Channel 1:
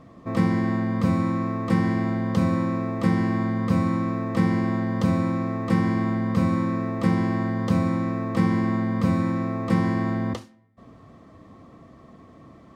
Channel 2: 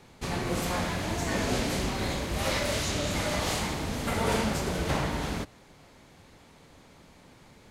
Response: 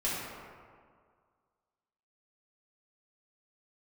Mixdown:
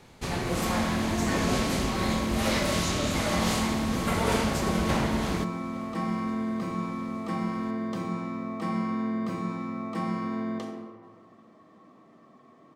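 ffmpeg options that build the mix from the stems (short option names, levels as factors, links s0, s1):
-filter_complex "[0:a]highpass=250,bandreject=f=530:w=12,adelay=250,volume=0.316,asplit=2[s0][s1];[s1]volume=0.531[s2];[1:a]volume=1.12,asplit=2[s3][s4];[s4]volume=0.0668[s5];[2:a]atrim=start_sample=2205[s6];[s2][s6]afir=irnorm=-1:irlink=0[s7];[s5]aecho=0:1:865|1730|2595|3460|4325|5190|6055:1|0.51|0.26|0.133|0.0677|0.0345|0.0176[s8];[s0][s3][s7][s8]amix=inputs=4:normalize=0"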